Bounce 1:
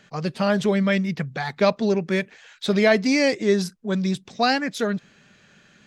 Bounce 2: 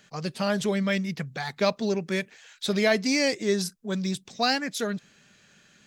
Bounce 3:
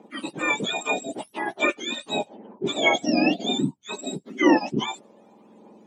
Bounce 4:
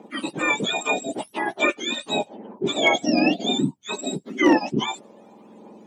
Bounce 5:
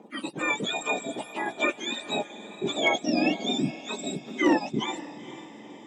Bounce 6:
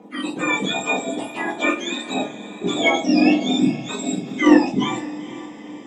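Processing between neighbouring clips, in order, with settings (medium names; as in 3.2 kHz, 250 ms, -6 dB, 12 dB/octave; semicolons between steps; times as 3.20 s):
treble shelf 4.9 kHz +12 dB; trim -5.5 dB
spectrum inverted on a logarithmic axis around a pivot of 1.2 kHz; phaser 0.88 Hz, delay 1.9 ms, feedback 34%; three-band isolator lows -24 dB, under 190 Hz, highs -18 dB, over 4.3 kHz; trim +5 dB
in parallel at -3 dB: compression, threshold -30 dBFS, peak gain reduction 17 dB; on the sum: hard clipper -8 dBFS, distortion -29 dB
echo that smears into a reverb 473 ms, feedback 52%, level -15 dB; attacks held to a fixed rise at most 590 dB/s; trim -5 dB
simulated room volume 220 m³, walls furnished, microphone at 1.9 m; trim +2.5 dB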